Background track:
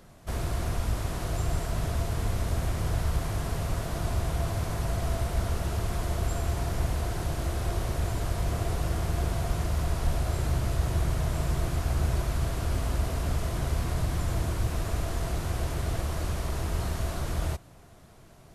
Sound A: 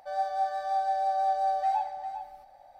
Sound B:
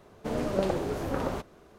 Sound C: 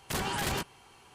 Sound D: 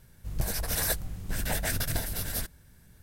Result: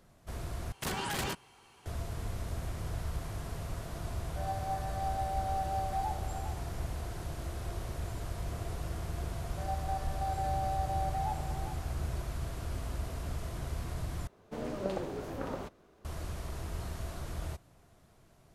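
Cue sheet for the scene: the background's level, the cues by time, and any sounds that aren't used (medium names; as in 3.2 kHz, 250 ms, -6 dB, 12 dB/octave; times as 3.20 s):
background track -9 dB
0.72 s: replace with C -3 dB
4.30 s: add A -8 dB
9.51 s: add A -4.5 dB + level held to a coarse grid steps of 10 dB
14.27 s: replace with B -7.5 dB
not used: D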